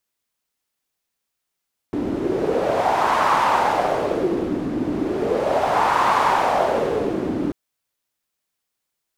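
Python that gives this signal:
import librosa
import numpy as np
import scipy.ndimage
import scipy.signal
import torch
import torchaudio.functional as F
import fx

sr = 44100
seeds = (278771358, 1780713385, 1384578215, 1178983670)

y = fx.wind(sr, seeds[0], length_s=5.59, low_hz=280.0, high_hz=1000.0, q=3.3, gusts=2, swing_db=6.0)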